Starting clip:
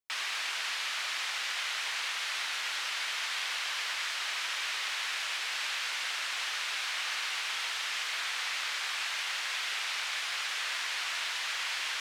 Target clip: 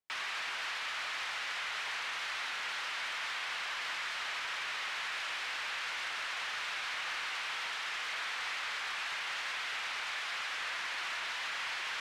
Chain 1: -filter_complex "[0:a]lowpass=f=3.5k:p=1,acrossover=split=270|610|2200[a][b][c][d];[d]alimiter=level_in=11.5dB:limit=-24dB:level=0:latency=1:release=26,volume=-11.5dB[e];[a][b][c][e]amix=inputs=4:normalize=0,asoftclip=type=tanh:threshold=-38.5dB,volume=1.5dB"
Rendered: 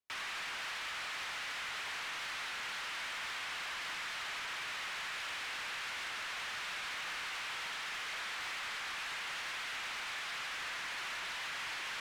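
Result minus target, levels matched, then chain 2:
soft clip: distortion +9 dB
-filter_complex "[0:a]lowpass=f=3.5k:p=1,acrossover=split=270|610|2200[a][b][c][d];[d]alimiter=level_in=11.5dB:limit=-24dB:level=0:latency=1:release=26,volume=-11.5dB[e];[a][b][c][e]amix=inputs=4:normalize=0,asoftclip=type=tanh:threshold=-31dB,volume=1.5dB"

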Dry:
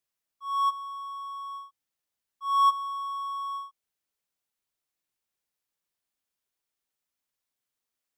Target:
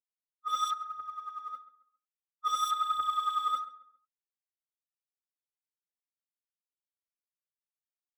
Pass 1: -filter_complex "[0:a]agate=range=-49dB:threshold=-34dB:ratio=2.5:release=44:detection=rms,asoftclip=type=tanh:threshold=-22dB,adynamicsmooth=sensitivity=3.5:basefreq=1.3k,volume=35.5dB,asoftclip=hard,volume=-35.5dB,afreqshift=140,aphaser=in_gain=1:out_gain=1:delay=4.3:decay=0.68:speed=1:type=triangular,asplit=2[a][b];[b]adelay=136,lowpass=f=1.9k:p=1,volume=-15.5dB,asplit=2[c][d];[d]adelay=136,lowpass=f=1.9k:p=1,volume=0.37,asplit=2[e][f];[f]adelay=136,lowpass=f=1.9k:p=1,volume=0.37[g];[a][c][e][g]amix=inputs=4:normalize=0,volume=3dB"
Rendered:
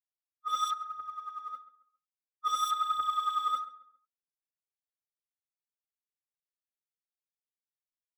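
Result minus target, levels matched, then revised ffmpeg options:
soft clip: distortion +9 dB
-filter_complex "[0:a]agate=range=-49dB:threshold=-34dB:ratio=2.5:release=44:detection=rms,asoftclip=type=tanh:threshold=-15dB,adynamicsmooth=sensitivity=3.5:basefreq=1.3k,volume=35.5dB,asoftclip=hard,volume=-35.5dB,afreqshift=140,aphaser=in_gain=1:out_gain=1:delay=4.3:decay=0.68:speed=1:type=triangular,asplit=2[a][b];[b]adelay=136,lowpass=f=1.9k:p=1,volume=-15.5dB,asplit=2[c][d];[d]adelay=136,lowpass=f=1.9k:p=1,volume=0.37,asplit=2[e][f];[f]adelay=136,lowpass=f=1.9k:p=1,volume=0.37[g];[a][c][e][g]amix=inputs=4:normalize=0,volume=3dB"

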